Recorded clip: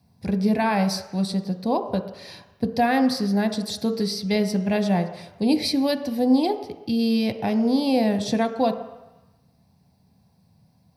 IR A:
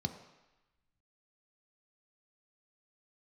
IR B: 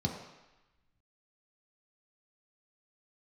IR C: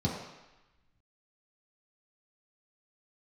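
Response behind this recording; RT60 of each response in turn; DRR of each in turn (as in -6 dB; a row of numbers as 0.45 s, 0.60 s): A; 1.0 s, 1.0 s, 1.0 s; 6.0 dB, -0.5 dB, -6.5 dB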